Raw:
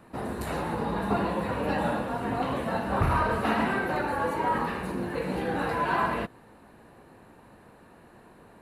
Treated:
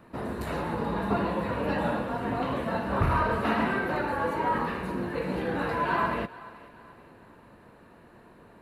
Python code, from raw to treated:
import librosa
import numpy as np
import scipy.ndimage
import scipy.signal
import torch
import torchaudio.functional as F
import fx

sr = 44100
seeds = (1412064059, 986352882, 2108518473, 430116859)

p1 = fx.peak_eq(x, sr, hz=9500.0, db=-6.5, octaves=1.3)
p2 = fx.notch(p1, sr, hz=780.0, q=12.0)
y = p2 + fx.echo_thinned(p2, sr, ms=431, feedback_pct=43, hz=420.0, wet_db=-18.0, dry=0)